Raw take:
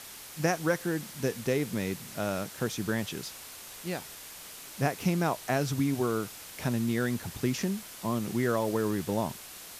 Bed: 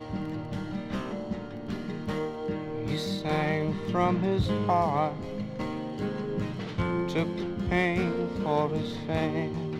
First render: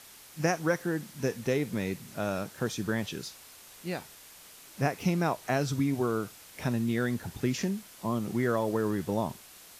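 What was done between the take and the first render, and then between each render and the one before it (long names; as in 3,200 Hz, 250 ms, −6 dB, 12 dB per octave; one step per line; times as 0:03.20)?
noise reduction from a noise print 6 dB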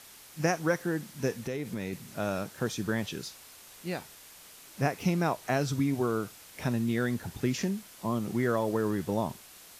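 0:01.37–0:01.93: downward compressor 5 to 1, threshold −30 dBFS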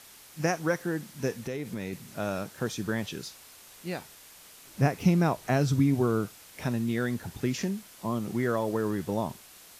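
0:04.65–0:06.26: low-shelf EQ 270 Hz +8 dB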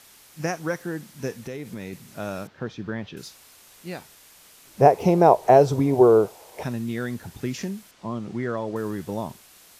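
0:02.47–0:03.17: high-frequency loss of the air 230 metres
0:04.80–0:06.63: flat-topped bell 600 Hz +15.5 dB
0:07.91–0:08.76: high-frequency loss of the air 92 metres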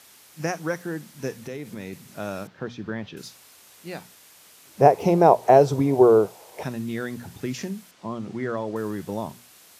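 high-pass filter 85 Hz
mains-hum notches 60/120/180/240 Hz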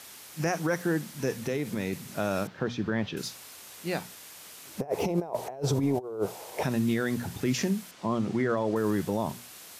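compressor whose output falls as the input rises −23 dBFS, ratio −0.5
brickwall limiter −17.5 dBFS, peak gain reduction 8 dB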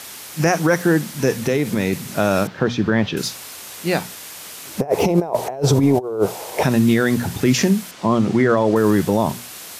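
level +11.5 dB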